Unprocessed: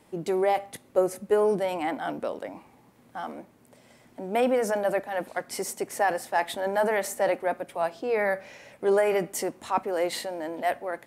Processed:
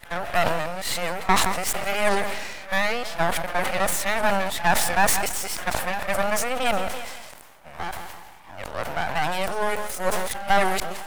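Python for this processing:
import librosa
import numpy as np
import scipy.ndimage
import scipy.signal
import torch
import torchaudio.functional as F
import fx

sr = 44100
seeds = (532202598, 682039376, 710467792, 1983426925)

p1 = x[::-1].copy()
p2 = scipy.signal.sosfilt(scipy.signal.butter(4, 690.0, 'highpass', fs=sr, output='sos'), p1)
p3 = fx.rider(p2, sr, range_db=10, speed_s=2.0)
p4 = p2 + (p3 * librosa.db_to_amplitude(0.5))
p5 = np.maximum(p4, 0.0)
p6 = fx.echo_feedback(p5, sr, ms=169, feedback_pct=53, wet_db=-24)
p7 = fx.sustainer(p6, sr, db_per_s=38.0)
y = p7 * librosa.db_to_amplitude(3.5)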